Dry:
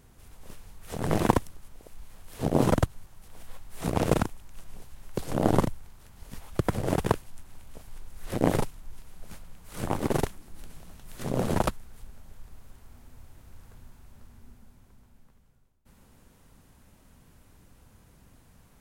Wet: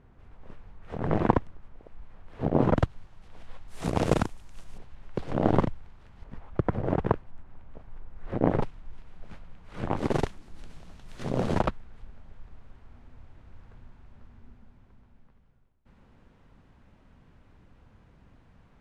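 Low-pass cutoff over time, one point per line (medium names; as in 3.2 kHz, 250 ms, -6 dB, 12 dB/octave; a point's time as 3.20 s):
1.9 kHz
from 2.77 s 3.6 kHz
from 3.68 s 7.6 kHz
from 4.78 s 2.9 kHz
from 6.24 s 1.6 kHz
from 8.61 s 2.8 kHz
from 9.97 s 5.2 kHz
from 11.61 s 2.8 kHz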